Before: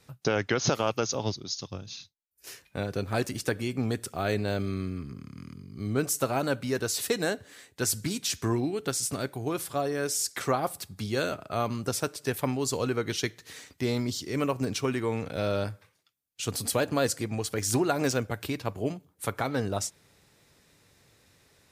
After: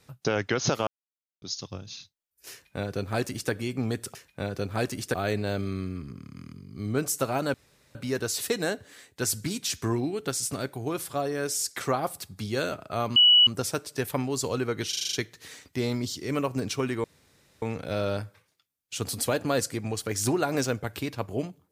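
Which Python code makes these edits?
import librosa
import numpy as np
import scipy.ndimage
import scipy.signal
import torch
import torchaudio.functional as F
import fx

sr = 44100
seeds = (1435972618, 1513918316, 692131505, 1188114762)

y = fx.edit(x, sr, fx.silence(start_s=0.87, length_s=0.55),
    fx.duplicate(start_s=2.52, length_s=0.99, to_s=4.15),
    fx.insert_room_tone(at_s=6.55, length_s=0.41),
    fx.insert_tone(at_s=11.76, length_s=0.31, hz=2940.0, db=-13.5),
    fx.stutter(start_s=13.18, slice_s=0.04, count=7),
    fx.insert_room_tone(at_s=15.09, length_s=0.58), tone=tone)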